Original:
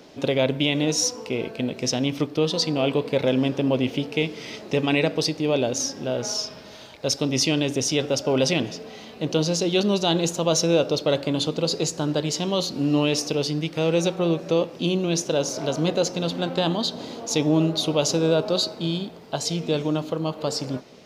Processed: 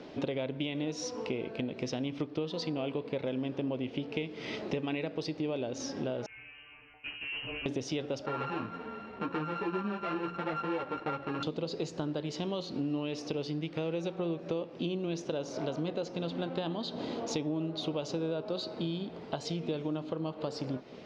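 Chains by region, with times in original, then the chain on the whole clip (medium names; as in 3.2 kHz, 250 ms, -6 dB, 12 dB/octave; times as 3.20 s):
6.26–7.66 s: inharmonic resonator 68 Hz, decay 0.57 s, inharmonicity 0.002 + hard clipper -34.5 dBFS + frequency inversion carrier 3 kHz
8.26–11.43 s: sorted samples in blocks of 32 samples + low-pass 2.4 kHz + three-phase chorus
whole clip: low-pass 3.5 kHz 12 dB/octave; compression, threshold -33 dBFS; peaking EQ 330 Hz +2.5 dB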